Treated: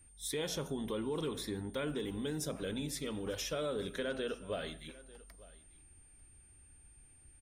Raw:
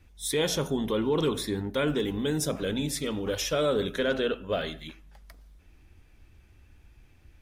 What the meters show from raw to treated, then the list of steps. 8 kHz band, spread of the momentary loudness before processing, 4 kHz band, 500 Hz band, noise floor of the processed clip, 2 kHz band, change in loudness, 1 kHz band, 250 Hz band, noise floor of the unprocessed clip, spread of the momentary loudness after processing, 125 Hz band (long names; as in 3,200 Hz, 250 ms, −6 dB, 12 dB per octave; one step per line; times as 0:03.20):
−8.0 dB, 5 LU, −9.5 dB, −10.0 dB, −61 dBFS, −10.0 dB, −10.0 dB, −10.5 dB, −9.5 dB, −58 dBFS, 16 LU, −9.5 dB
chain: on a send: single-tap delay 894 ms −23 dB
on the sum: downward compressor 2.5 to 1, threshold −27 dBFS, peak gain reduction 4 dB
steady tone 9,000 Hz −53 dBFS
level −7.5 dB